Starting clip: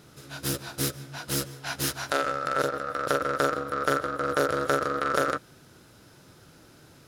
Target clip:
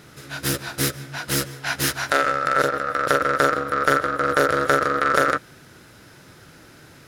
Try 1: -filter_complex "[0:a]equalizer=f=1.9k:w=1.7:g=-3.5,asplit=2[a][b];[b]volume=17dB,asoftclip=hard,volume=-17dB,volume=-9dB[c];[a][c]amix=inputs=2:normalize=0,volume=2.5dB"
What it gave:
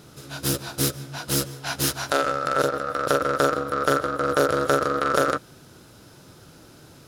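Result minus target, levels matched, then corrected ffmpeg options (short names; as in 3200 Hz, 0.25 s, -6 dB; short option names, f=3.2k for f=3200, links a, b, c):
2000 Hz band -4.0 dB
-filter_complex "[0:a]equalizer=f=1.9k:w=1.7:g=6.5,asplit=2[a][b];[b]volume=17dB,asoftclip=hard,volume=-17dB,volume=-9dB[c];[a][c]amix=inputs=2:normalize=0,volume=2.5dB"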